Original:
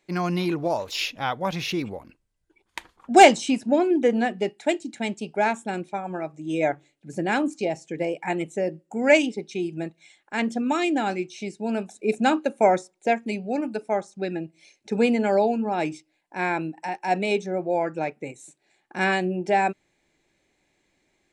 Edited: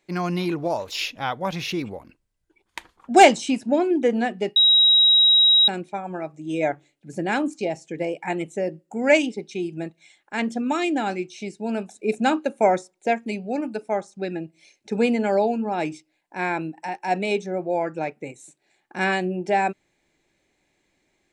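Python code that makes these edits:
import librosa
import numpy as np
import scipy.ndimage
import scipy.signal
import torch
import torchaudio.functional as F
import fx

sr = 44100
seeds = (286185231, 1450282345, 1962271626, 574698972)

y = fx.edit(x, sr, fx.bleep(start_s=4.56, length_s=1.12, hz=3830.0, db=-12.0), tone=tone)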